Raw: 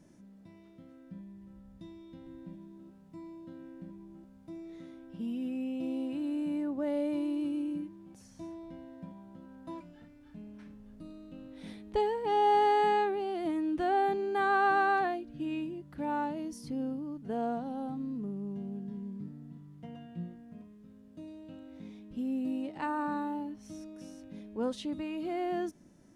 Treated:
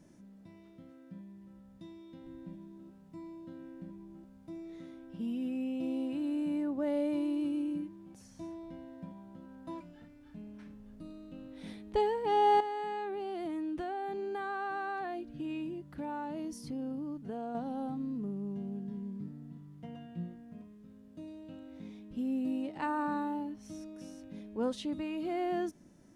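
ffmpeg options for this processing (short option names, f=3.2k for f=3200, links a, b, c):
-filter_complex "[0:a]asettb=1/sr,asplit=3[a][b][c];[a]atrim=end=0.914[d];[b]atrim=start=0.91:end=2.24,asetpts=PTS-STARTPTS,afade=t=in:d=0.004:c=qsin,afade=t=out:st=1.326:d=0.004:c=qsin,highpass=f=140:p=1[e];[c]atrim=start=2.236[f];[d][e]acrossfade=d=0.004:c1=hsin:c2=qsin[g];[g][f]acrossfade=d=0.004:c1=qsin:c2=hsin,asettb=1/sr,asplit=3[h][i][j];[h]atrim=end=12.604[k];[i]atrim=start=12.6:end=17.55,asetpts=PTS-STARTPTS,afade=t=in:d=0.004:c=qsin,afade=t=out:st=4.946:d=0.004:c=qsin,acompressor=threshold=-34dB:ratio=6:attack=3.2:release=140:knee=1:detection=peak[l];[j]atrim=start=17.546[m];[k][l]acrossfade=d=0.004:c1=hsin:c2=qsin[n];[n][m]acrossfade=d=0.004:c1=qsin:c2=hsin"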